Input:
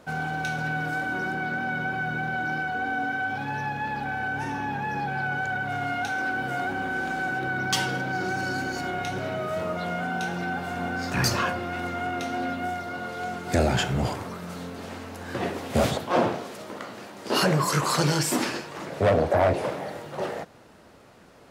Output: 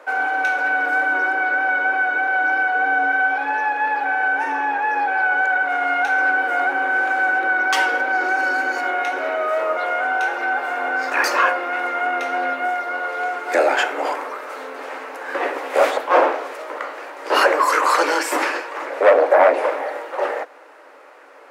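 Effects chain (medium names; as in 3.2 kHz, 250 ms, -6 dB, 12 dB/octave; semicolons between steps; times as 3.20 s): Chebyshev high-pass 270 Hz, order 8; high-order bell 1.1 kHz +11 dB 2.7 oct; band-stop 680 Hz, Q 12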